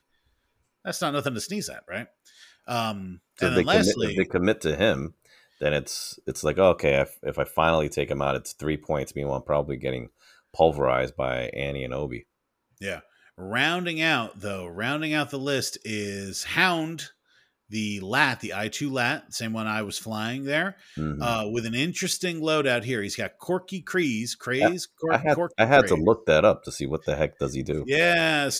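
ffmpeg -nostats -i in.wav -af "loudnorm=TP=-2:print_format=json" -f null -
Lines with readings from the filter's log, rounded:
"input_i" : "-24.8",
"input_tp" : "-2.9",
"input_lra" : "6.1",
"input_thresh" : "-35.2",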